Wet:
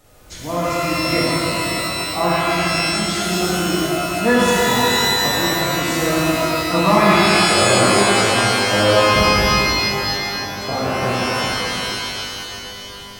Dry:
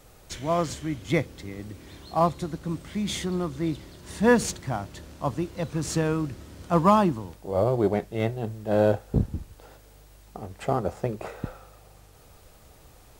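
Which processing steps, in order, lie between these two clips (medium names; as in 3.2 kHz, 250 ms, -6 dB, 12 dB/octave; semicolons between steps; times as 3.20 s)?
wow and flutter 20 cents; pitch-shifted reverb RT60 2.9 s, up +12 st, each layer -2 dB, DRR -7.5 dB; trim -1.5 dB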